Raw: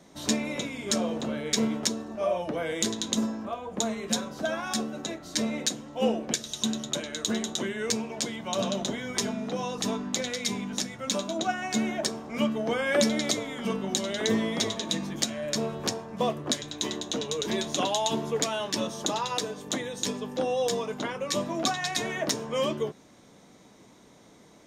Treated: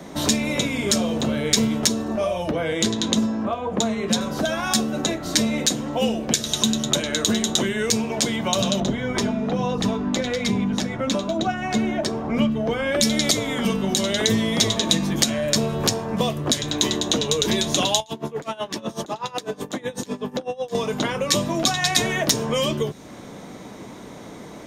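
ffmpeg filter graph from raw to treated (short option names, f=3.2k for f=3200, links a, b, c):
-filter_complex "[0:a]asettb=1/sr,asplit=3[a][b][c];[a]atrim=end=2.514[d];[b]atrim=start=2.51:end=4.21,asetpts=PTS-STARTPTS,afade=t=in:d=0.004:c=qsin,afade=t=out:st=1.696:d=0.004:c=qsin,highpass=78,aemphasis=mode=reproduction:type=50kf[e];[c]atrim=start=4.206[f];[d][e]acrossfade=d=0.004:c1=hsin:c2=qsin[g];[g][f]acrossfade=d=0.004:c1=qsin:c2=hsin,asettb=1/sr,asplit=3[h][i][j];[h]atrim=end=8.804[k];[i]atrim=start=8.8:end=13.01,asetpts=PTS-STARTPTS,afade=t=in:d=0.004:c=qsin,afade=t=out:st=4.206:d=0.004:c=qsin,lowpass=f=1.6k:p=1,aphaser=in_gain=1:out_gain=1:delay=3.4:decay=0.26:speed=1.1:type=sinusoidal[l];[j]atrim=start=13.006[m];[k][l]acrossfade=d=0.004:c1=hsin:c2=qsin[n];[n][m]acrossfade=d=0.004:c1=qsin:c2=hsin,asettb=1/sr,asplit=3[o][p][q];[o]atrim=end=18.004[r];[p]atrim=start=18:end=20.75,asetpts=PTS-STARTPTS,afade=t=in:d=0.004:c=qsin,afade=t=out:st=2.746:d=0.004:c=qsin,acompressor=threshold=-34dB:ratio=10:attack=3.2:release=140:knee=1:detection=peak,aeval=exprs='val(0)*pow(10,-22*(0.5-0.5*cos(2*PI*8*n/s))/20)':c=same[s];[q]atrim=start=20.746[t];[r][s]acrossfade=d=0.004:c1=hsin:c2=qsin[u];[u][t]acrossfade=d=0.004:c1=qsin:c2=hsin,acrossover=split=130|3000[v][w][x];[w]acompressor=threshold=-39dB:ratio=6[y];[v][y][x]amix=inputs=3:normalize=0,equalizer=f=6.1k:t=o:w=2:g=-6,alimiter=level_in=17.5dB:limit=-1dB:release=50:level=0:latency=1,volume=-1dB"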